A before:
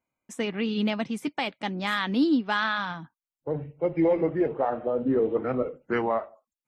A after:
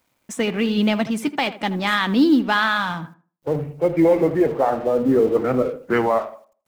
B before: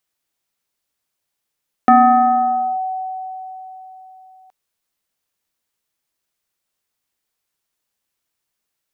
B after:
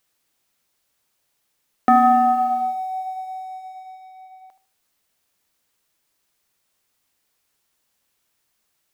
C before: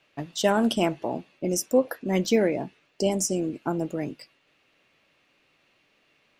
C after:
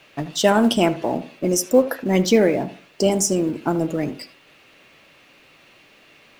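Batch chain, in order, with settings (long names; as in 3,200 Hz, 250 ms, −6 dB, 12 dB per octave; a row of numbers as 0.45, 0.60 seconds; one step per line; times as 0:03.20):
mu-law and A-law mismatch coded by mu
tape delay 78 ms, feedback 29%, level −12.5 dB, low-pass 1,800 Hz
loudness normalisation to −20 LKFS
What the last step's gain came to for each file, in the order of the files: +6.5, −3.5, +5.5 decibels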